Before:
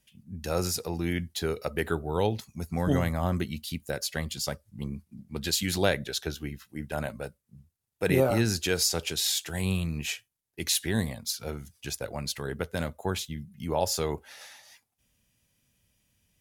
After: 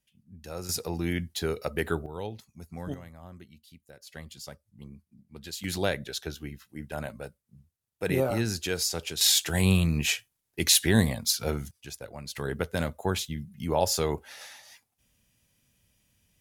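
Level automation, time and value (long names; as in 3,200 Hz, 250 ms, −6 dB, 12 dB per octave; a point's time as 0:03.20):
−9.5 dB
from 0:00.69 0 dB
from 0:02.06 −10 dB
from 0:02.94 −19 dB
from 0:04.07 −11 dB
from 0:05.64 −3 dB
from 0:09.21 +6 dB
from 0:11.71 −6.5 dB
from 0:12.35 +2 dB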